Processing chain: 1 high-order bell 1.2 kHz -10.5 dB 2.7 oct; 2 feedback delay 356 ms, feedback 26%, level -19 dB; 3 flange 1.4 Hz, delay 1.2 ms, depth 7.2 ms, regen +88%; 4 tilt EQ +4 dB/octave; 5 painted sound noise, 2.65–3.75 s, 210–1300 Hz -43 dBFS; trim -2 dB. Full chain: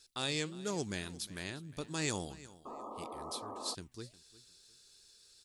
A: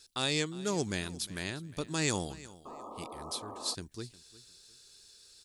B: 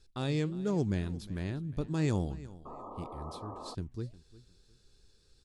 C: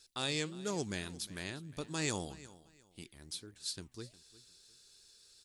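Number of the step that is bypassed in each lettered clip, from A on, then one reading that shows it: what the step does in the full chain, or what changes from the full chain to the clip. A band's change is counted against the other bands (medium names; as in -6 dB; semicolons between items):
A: 3, loudness change +4.5 LU; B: 4, 8 kHz band -13.5 dB; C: 5, 1 kHz band -3.5 dB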